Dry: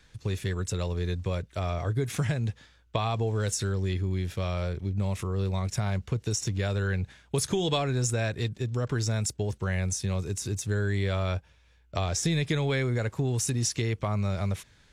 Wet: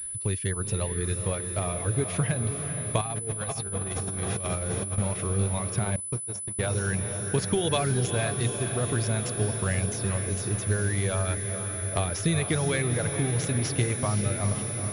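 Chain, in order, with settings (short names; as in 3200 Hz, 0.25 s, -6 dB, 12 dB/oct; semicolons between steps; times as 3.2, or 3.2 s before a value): reverb removal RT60 0.93 s; diffused feedback echo 0.459 s, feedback 72%, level -7.5 dB; 3.01–4.98 negative-ratio compressor -33 dBFS, ratio -0.5; 5.96–6.59 gate -26 dBFS, range -31 dB; pulse-width modulation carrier 10000 Hz; gain +2 dB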